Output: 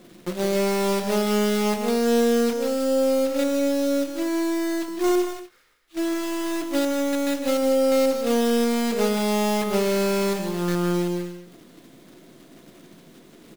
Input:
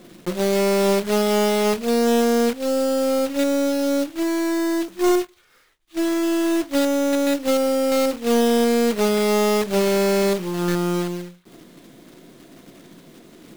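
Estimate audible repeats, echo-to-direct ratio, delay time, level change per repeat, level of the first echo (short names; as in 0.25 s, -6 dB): 2, -6.5 dB, 0.154 s, no steady repeat, -9.0 dB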